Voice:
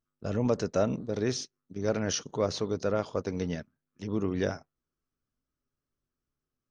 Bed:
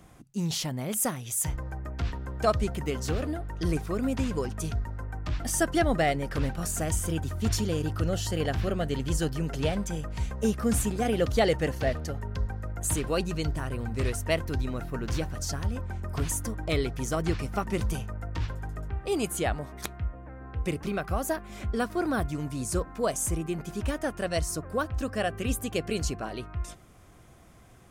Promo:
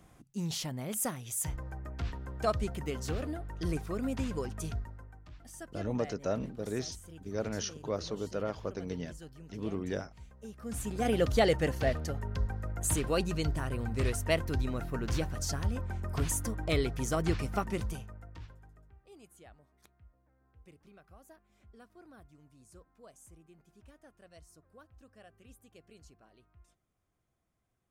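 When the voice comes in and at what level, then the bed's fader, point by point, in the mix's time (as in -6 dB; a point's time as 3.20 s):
5.50 s, -6.0 dB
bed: 4.74 s -5.5 dB
5.29 s -20.5 dB
10.49 s -20.5 dB
11.07 s -2 dB
17.57 s -2 dB
19.07 s -27.5 dB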